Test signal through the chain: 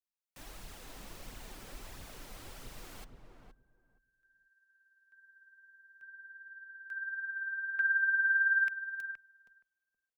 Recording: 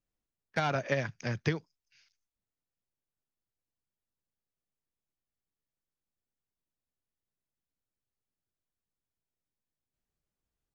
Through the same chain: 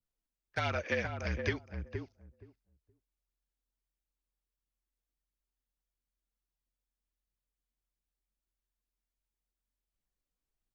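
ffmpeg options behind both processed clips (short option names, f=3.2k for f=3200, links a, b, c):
-filter_complex "[0:a]flanger=delay=0.2:depth=3.8:regen=42:speed=1.5:shape=triangular,afreqshift=-45,asplit=2[a][b];[b]adelay=471,lowpass=f=800:p=1,volume=-4dB,asplit=2[c][d];[d]adelay=471,lowpass=f=800:p=1,volume=0.16,asplit=2[e][f];[f]adelay=471,lowpass=f=800:p=1,volume=0.16[g];[a][c][e][g]amix=inputs=4:normalize=0,adynamicequalizer=threshold=0.00355:dfrequency=2400:dqfactor=1.3:tfrequency=2400:tqfactor=1.3:attack=5:release=100:ratio=0.375:range=3:mode=boostabove:tftype=bell"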